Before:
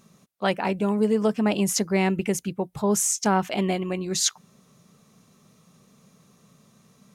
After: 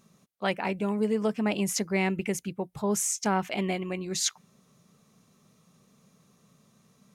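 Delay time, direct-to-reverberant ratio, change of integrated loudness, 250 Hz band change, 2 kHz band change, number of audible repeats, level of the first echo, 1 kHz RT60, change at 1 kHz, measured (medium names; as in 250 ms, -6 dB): no echo, no reverb, -4.5 dB, -5.0 dB, -2.0 dB, no echo, no echo, no reverb, -5.0 dB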